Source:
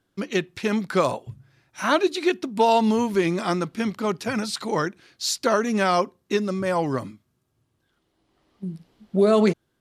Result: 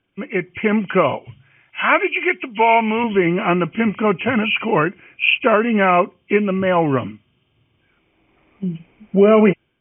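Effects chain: knee-point frequency compression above 2 kHz 4:1; 1.25–3.04 s: tilt shelf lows -6.5 dB, about 730 Hz; level rider gain up to 8.5 dB

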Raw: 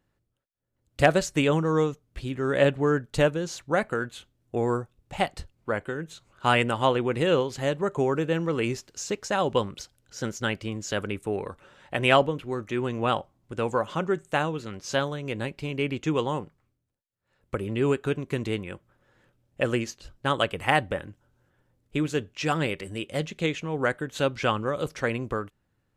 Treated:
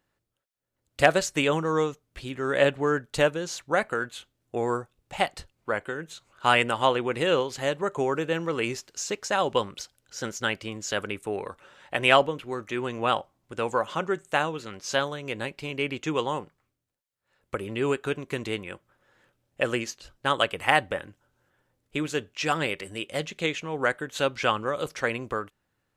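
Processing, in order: bass shelf 340 Hz -10 dB; trim +2.5 dB

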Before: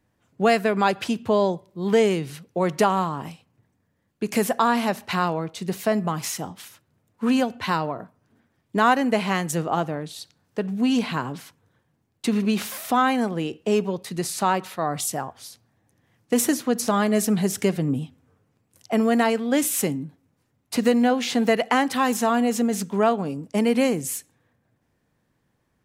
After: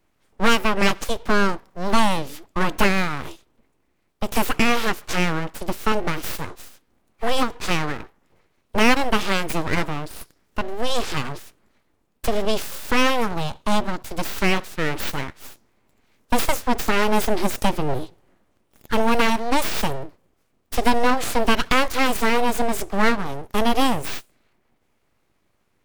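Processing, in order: full-wave rectifier; formant shift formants +3 st; trim +3.5 dB

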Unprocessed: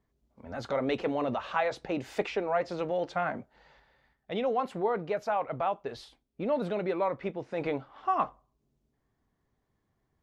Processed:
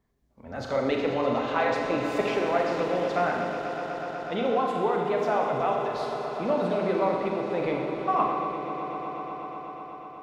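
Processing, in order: echo with a slow build-up 123 ms, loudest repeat 5, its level -14 dB; Schroeder reverb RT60 1.6 s, combs from 30 ms, DRR 1 dB; trim +1.5 dB

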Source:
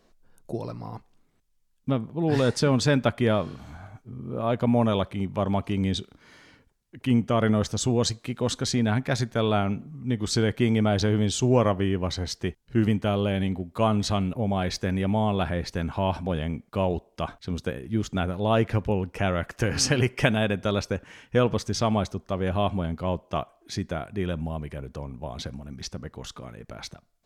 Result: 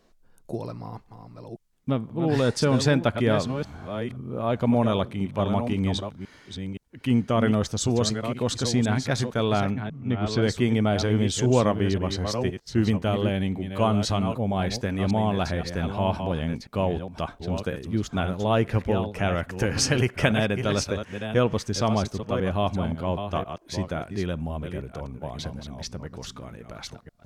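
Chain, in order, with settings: chunks repeated in reverse 521 ms, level -8 dB; 9.71–10.41 s: low-pass 6.5 kHz -> 3.4 kHz 12 dB/octave

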